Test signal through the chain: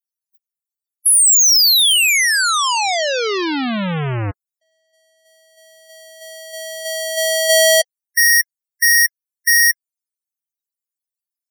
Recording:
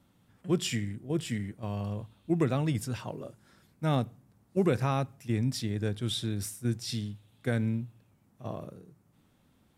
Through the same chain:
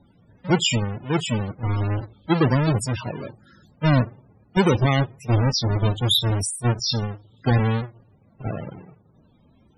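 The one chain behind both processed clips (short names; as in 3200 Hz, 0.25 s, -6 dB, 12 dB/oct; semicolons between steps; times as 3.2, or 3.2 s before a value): half-waves squared off; high shelf 2200 Hz +11.5 dB; loudest bins only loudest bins 32; gain +4.5 dB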